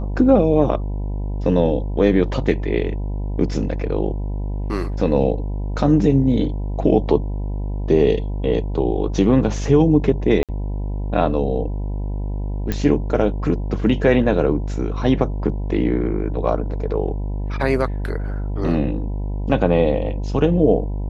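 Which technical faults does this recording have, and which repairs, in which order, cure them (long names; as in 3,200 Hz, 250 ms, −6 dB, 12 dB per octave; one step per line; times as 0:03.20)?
mains buzz 50 Hz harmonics 20 −24 dBFS
0:10.43–0:10.49: drop-out 57 ms
0:12.72: click −9 dBFS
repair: click removal
hum removal 50 Hz, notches 20
repair the gap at 0:10.43, 57 ms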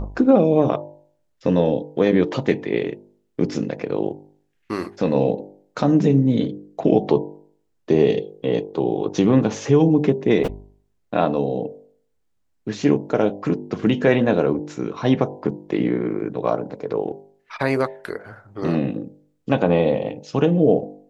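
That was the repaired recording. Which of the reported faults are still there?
none of them is left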